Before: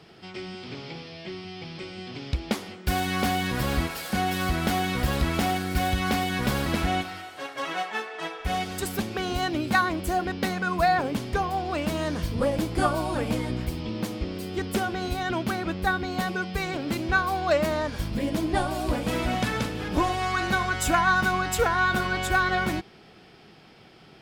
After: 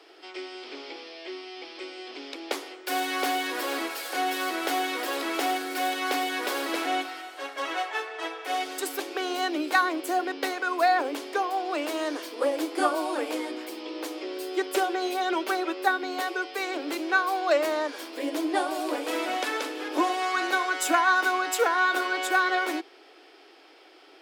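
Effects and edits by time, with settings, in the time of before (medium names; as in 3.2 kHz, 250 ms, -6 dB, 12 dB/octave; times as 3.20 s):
14.17–15.88 s: comb 5.2 ms
whole clip: steep high-pass 280 Hz 96 dB/octave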